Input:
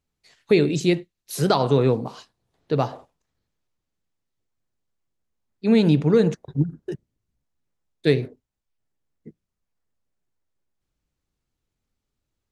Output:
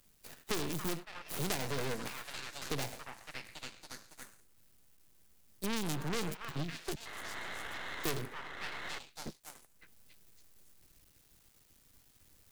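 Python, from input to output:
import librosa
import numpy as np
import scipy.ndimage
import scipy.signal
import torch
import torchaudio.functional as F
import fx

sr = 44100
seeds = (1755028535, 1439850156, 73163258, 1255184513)

p1 = scipy.ndimage.median_filter(x, 41, mode='constant')
p2 = fx.rider(p1, sr, range_db=10, speed_s=2.0)
p3 = p1 + (p2 * 10.0 ** (0.5 / 20.0))
p4 = 10.0 ** (-15.0 / 20.0) * np.tanh(p3 / 10.0 ** (-15.0 / 20.0))
p5 = fx.high_shelf(p4, sr, hz=5400.0, db=6.0)
p6 = p5 + fx.echo_stepped(p5, sr, ms=279, hz=1300.0, octaves=0.7, feedback_pct=70, wet_db=-6.0, dry=0)
p7 = fx.spec_paint(p6, sr, seeds[0], shape='noise', start_s=7.05, length_s=1.94, low_hz=300.0, high_hz=2200.0, level_db=-41.0)
p8 = librosa.effects.preemphasis(p7, coef=0.9, zi=[0.0])
p9 = np.maximum(p8, 0.0)
p10 = fx.band_squash(p9, sr, depth_pct=70)
y = p10 * 10.0 ** (6.5 / 20.0)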